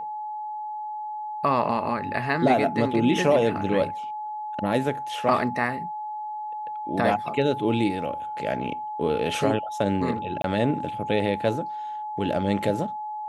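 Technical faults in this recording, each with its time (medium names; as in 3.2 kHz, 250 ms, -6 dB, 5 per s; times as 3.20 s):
whine 850 Hz -30 dBFS
10.42–10.44 s: dropout 22 ms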